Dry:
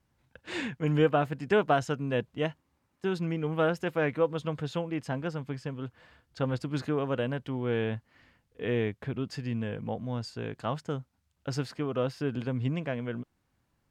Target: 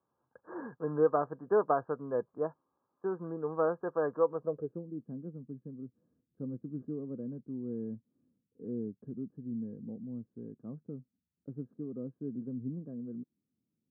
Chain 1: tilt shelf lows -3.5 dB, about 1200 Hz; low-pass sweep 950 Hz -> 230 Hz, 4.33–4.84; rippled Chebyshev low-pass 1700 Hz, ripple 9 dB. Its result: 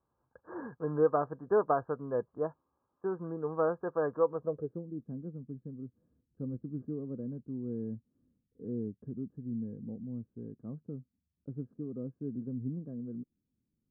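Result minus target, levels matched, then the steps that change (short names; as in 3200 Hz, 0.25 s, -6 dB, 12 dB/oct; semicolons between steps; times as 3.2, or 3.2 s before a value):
125 Hz band +3.0 dB
add first: HPF 140 Hz 12 dB/oct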